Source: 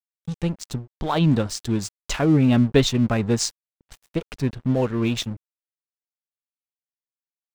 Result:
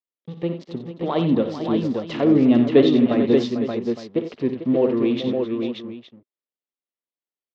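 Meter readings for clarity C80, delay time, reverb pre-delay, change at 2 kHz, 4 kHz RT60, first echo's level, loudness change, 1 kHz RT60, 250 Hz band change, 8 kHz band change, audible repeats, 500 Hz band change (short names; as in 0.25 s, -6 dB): none, 59 ms, none, -3.5 dB, none, -10.5 dB, +2.0 dB, none, +3.5 dB, under -20 dB, 6, +6.0 dB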